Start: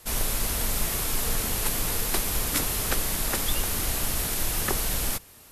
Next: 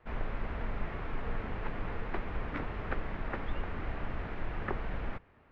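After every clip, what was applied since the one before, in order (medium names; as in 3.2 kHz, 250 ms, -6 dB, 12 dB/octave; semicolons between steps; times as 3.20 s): low-pass 2.1 kHz 24 dB/octave; trim -6 dB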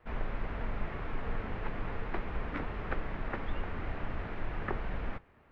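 flange 0.39 Hz, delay 3.8 ms, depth 7.8 ms, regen -82%; trim +4.5 dB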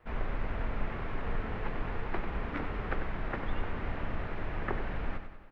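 feedback delay 95 ms, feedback 55%, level -9 dB; trim +1 dB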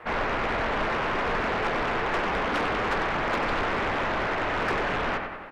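overdrive pedal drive 28 dB, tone 2.4 kHz, clips at -17 dBFS; loudspeaker Doppler distortion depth 0.6 ms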